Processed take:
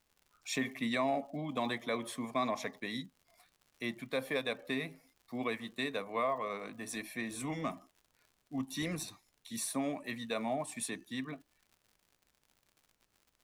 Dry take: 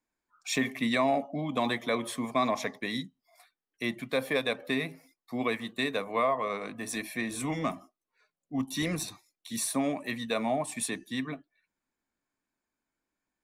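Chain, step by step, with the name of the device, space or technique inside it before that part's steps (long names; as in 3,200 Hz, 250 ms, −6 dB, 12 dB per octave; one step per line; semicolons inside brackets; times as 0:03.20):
vinyl LP (surface crackle 100 per second −46 dBFS; pink noise bed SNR 41 dB)
level −6 dB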